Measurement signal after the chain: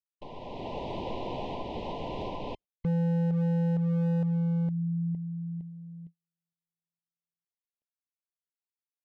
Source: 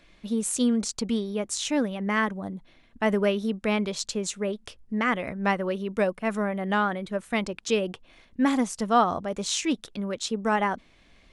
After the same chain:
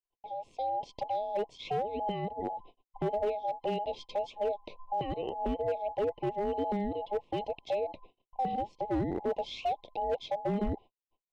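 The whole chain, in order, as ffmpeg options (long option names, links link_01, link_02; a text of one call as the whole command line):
ffmpeg -i in.wav -filter_complex "[0:a]afftfilt=real='real(if(between(b,1,1008),(2*floor((b-1)/48)+1)*48-b,b),0)':imag='imag(if(between(b,1,1008),(2*floor((b-1)/48)+1)*48-b,b),0)*if(between(b,1,1008),-1,1)':win_size=2048:overlap=0.75,adynamicequalizer=threshold=0.0126:dfrequency=580:dqfactor=4.1:tfrequency=580:tqfactor=4.1:attack=5:release=100:ratio=0.375:range=2:mode=cutabove:tftype=bell,asplit=2[link_01][link_02];[link_02]acompressor=threshold=-35dB:ratio=8,volume=2dB[link_03];[link_01][link_03]amix=inputs=2:normalize=0,lowpass=frequency=2600:width=0.5412,lowpass=frequency=2600:width=1.3066,alimiter=limit=-19dB:level=0:latency=1:release=311,agate=range=-48dB:threshold=-43dB:ratio=16:detection=peak,dynaudnorm=framelen=110:gausssize=11:maxgain=9dB,asuperstop=centerf=1500:order=4:qfactor=0.53,asoftclip=type=hard:threshold=-17dB,volume=-8dB" out.wav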